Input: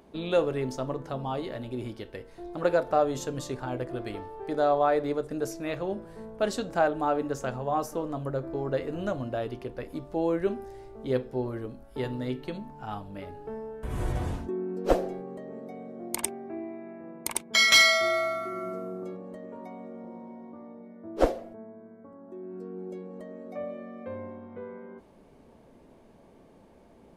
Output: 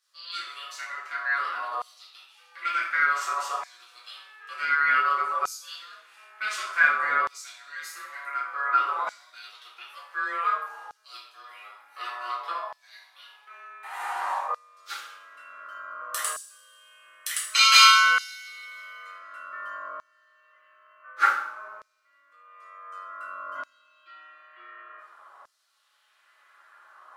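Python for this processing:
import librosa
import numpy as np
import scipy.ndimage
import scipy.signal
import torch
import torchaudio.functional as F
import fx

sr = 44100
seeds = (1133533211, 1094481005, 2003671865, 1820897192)

y = x * np.sin(2.0 * np.pi * 850.0 * np.arange(len(x)) / sr)
y = fx.rev_double_slope(y, sr, seeds[0], early_s=0.53, late_s=2.4, knee_db=-25, drr_db=-7.0)
y = fx.filter_lfo_highpass(y, sr, shape='saw_down', hz=0.55, low_hz=910.0, high_hz=5400.0, q=1.7)
y = F.gain(torch.from_numpy(y), -2.0).numpy()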